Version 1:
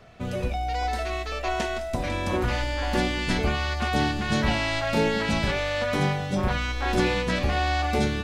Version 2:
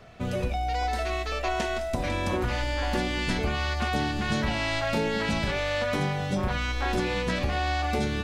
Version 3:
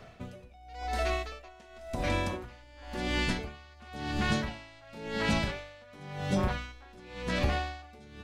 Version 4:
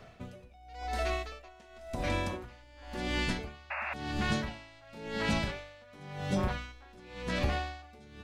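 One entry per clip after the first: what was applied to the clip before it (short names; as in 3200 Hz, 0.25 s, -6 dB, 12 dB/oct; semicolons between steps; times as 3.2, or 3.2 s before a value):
compressor, threshold -24 dBFS, peak gain reduction 7 dB; gain +1 dB
dB-linear tremolo 0.94 Hz, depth 26 dB
painted sound noise, 3.7–3.94, 550–2800 Hz -34 dBFS; gain -2 dB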